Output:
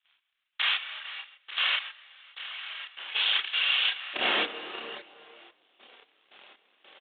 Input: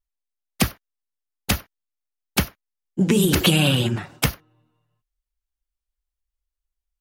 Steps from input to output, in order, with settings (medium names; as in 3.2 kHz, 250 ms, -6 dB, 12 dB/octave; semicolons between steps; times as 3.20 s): spectral levelling over time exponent 0.4; waveshaping leveller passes 3; compression 8:1, threshold -9 dBFS, peak gain reduction 6 dB; Bessel high-pass 1.7 kHz, order 4, from 4.13 s 560 Hz; gate -46 dBFS, range -25 dB; reverberation RT60 1.5 s, pre-delay 27 ms, DRR 2 dB; peak limiter -8.5 dBFS, peak gain reduction 9.5 dB; square tremolo 1.9 Hz, depth 60%, duty 40%; resampled via 8 kHz; level held to a coarse grid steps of 14 dB; chorus voices 4, 0.69 Hz, delay 30 ms, depth 2.2 ms; trim +5.5 dB